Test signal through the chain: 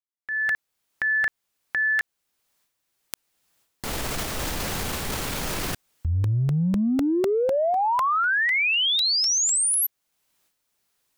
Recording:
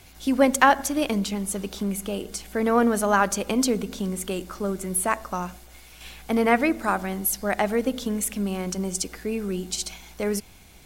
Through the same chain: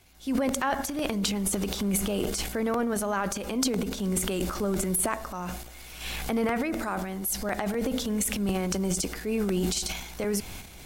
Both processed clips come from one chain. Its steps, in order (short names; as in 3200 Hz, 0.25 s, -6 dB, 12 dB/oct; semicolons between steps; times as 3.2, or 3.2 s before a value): recorder AGC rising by 19 dB/s; transient shaper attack -3 dB, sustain +11 dB; crackling interface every 0.25 s, samples 64, repeat, from 0.49; gain -10.5 dB